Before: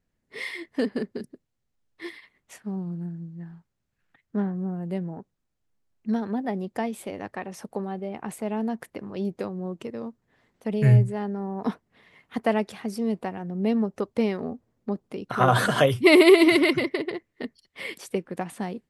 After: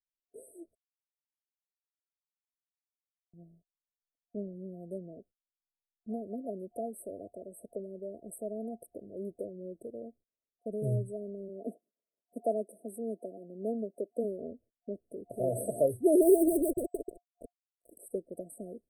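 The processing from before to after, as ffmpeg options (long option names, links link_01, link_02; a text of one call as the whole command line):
ffmpeg -i in.wav -filter_complex "[0:a]asplit=3[link_01][link_02][link_03];[link_01]afade=type=out:start_time=11.48:duration=0.02[link_04];[link_02]highpass=frequency=190:width=0.5412,highpass=frequency=190:width=1.3066,afade=type=in:start_time=11.48:duration=0.02,afade=type=out:start_time=14.23:duration=0.02[link_05];[link_03]afade=type=in:start_time=14.23:duration=0.02[link_06];[link_04][link_05][link_06]amix=inputs=3:normalize=0,asplit=3[link_07][link_08][link_09];[link_07]afade=type=out:start_time=16.21:duration=0.02[link_10];[link_08]acrusher=bits=3:mix=0:aa=0.5,afade=type=in:start_time=16.21:duration=0.02,afade=type=out:start_time=17.91:duration=0.02[link_11];[link_09]afade=type=in:start_time=17.91:duration=0.02[link_12];[link_10][link_11][link_12]amix=inputs=3:normalize=0,asplit=3[link_13][link_14][link_15];[link_13]atrim=end=0.75,asetpts=PTS-STARTPTS,afade=type=out:start_time=0.746:duration=0.004:curve=hsin[link_16];[link_14]atrim=start=0.75:end=3.33,asetpts=PTS-STARTPTS,volume=0[link_17];[link_15]atrim=start=3.33,asetpts=PTS-STARTPTS,afade=type=in:duration=0.004:curve=hsin[link_18];[link_16][link_17][link_18]concat=n=3:v=0:a=1,agate=range=-27dB:threshold=-50dB:ratio=16:detection=peak,afftfilt=real='re*(1-between(b*sr/4096,710,8000))':imag='im*(1-between(b*sr/4096,710,8000))':win_size=4096:overlap=0.75,equalizer=frequency=150:width_type=o:width=1.7:gain=-13.5,volume=-3.5dB" out.wav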